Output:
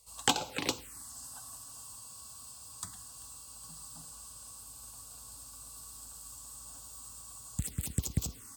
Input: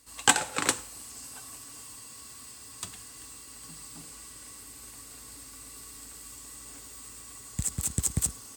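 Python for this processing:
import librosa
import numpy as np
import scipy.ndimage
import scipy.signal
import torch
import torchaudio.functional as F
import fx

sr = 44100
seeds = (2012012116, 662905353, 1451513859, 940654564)

y = fx.env_phaser(x, sr, low_hz=280.0, high_hz=1800.0, full_db=-24.5)
y = y * 10.0 ** (-1.5 / 20.0)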